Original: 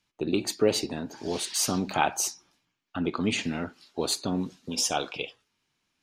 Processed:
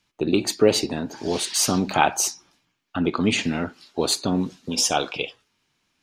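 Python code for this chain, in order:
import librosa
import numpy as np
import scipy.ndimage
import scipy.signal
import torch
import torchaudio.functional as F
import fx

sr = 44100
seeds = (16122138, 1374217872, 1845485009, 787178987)

y = fx.high_shelf(x, sr, hz=12000.0, db=-3.5)
y = F.gain(torch.from_numpy(y), 6.0).numpy()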